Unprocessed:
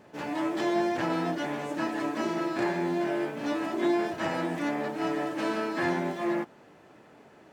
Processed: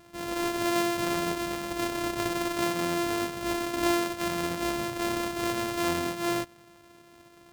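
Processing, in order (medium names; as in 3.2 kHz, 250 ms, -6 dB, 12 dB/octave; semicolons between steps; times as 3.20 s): sorted samples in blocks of 128 samples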